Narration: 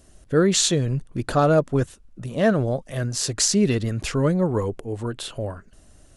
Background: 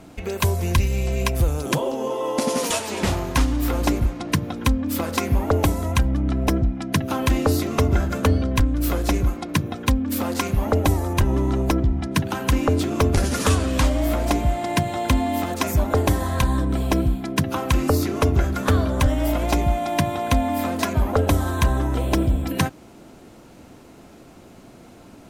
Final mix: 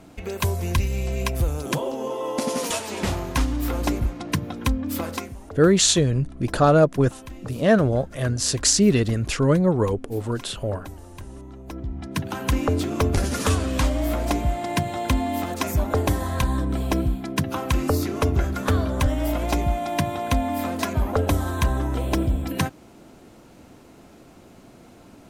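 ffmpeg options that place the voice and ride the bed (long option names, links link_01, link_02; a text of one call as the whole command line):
ffmpeg -i stem1.wav -i stem2.wav -filter_complex "[0:a]adelay=5250,volume=2dB[link_01];[1:a]volume=14dB,afade=type=out:start_time=5.06:duration=0.28:silence=0.149624,afade=type=in:start_time=11.64:duration=0.83:silence=0.141254[link_02];[link_01][link_02]amix=inputs=2:normalize=0" out.wav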